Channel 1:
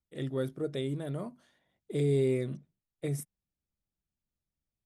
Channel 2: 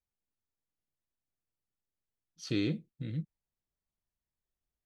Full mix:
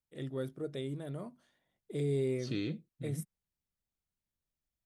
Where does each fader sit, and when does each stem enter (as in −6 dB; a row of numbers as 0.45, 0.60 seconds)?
−5.0, −5.0 decibels; 0.00, 0.00 seconds